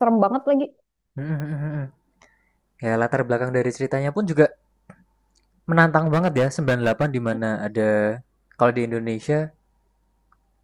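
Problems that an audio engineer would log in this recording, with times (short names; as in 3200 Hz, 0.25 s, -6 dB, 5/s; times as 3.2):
1.4 pop -19 dBFS
5.98–7.32 clipped -14.5 dBFS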